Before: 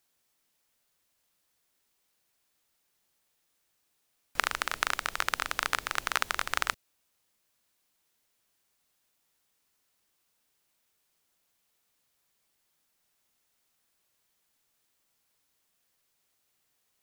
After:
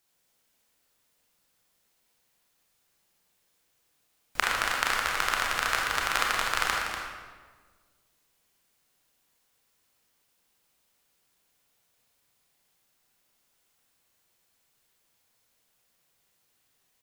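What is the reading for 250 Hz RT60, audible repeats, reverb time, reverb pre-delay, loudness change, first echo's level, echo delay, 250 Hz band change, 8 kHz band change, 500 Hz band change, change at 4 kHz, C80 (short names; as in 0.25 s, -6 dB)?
1.9 s, 1, 1.5 s, 27 ms, +3.5 dB, -8.0 dB, 0.242 s, +5.0 dB, +3.5 dB, +5.0 dB, +4.0 dB, 1.5 dB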